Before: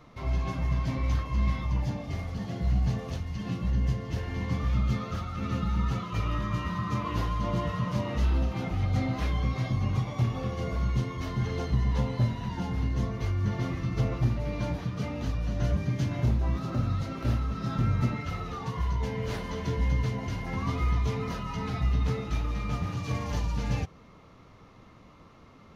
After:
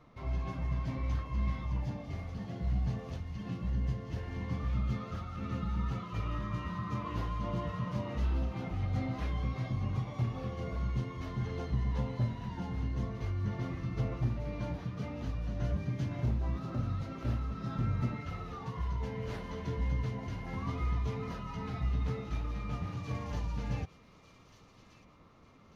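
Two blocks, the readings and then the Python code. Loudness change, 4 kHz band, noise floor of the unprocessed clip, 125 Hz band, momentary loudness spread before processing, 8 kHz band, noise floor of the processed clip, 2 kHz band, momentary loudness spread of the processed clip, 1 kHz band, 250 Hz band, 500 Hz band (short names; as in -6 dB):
-6.0 dB, -9.0 dB, -53 dBFS, -6.0 dB, 6 LU, n/a, -59 dBFS, -7.5 dB, 6 LU, -6.5 dB, -6.0 dB, -6.0 dB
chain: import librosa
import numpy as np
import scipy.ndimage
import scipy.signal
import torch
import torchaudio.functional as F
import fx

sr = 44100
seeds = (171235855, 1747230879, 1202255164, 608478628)

y = fx.high_shelf(x, sr, hz=3800.0, db=-7.0)
y = fx.echo_wet_highpass(y, sr, ms=1194, feedback_pct=37, hz=2800.0, wet_db=-10.0)
y = F.gain(torch.from_numpy(y), -6.0).numpy()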